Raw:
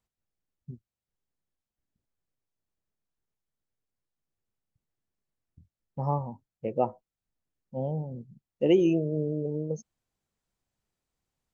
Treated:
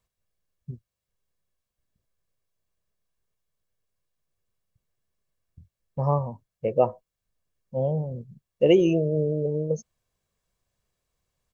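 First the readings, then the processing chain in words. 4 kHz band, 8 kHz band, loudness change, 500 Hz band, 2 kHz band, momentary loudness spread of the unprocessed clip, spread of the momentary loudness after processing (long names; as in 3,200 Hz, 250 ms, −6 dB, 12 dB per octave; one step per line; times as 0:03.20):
+6.0 dB, can't be measured, +4.0 dB, +5.5 dB, +5.5 dB, 21 LU, 19 LU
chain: comb filter 1.8 ms, depth 45%
level +4.5 dB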